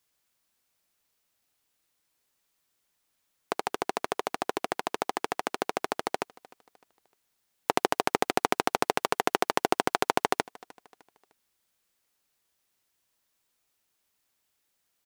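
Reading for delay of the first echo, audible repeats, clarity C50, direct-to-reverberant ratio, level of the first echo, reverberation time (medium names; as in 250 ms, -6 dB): 304 ms, 2, no reverb, no reverb, -23.0 dB, no reverb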